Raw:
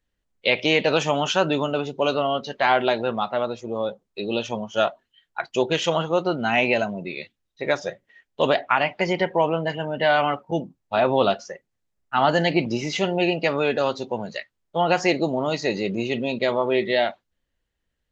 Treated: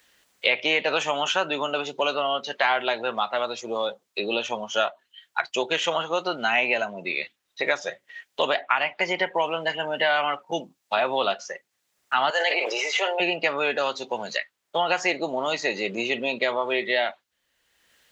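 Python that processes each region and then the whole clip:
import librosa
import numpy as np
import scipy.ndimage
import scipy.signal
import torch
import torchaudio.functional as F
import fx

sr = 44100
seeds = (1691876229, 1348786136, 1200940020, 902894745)

y = fx.chain(x, sr, fx.ellip_highpass(hz=430.0, order=4, stop_db=60),
    fx.sustainer(db_per_s=27.0), at=(12.3, 13.2))
y = fx.highpass(y, sr, hz=1400.0, slope=6)
y = fx.dynamic_eq(y, sr, hz=4900.0, q=1.5, threshold_db=-45.0, ratio=4.0, max_db=-7)
y = fx.band_squash(y, sr, depth_pct=70)
y = F.gain(torch.from_numpy(y), 4.0).numpy()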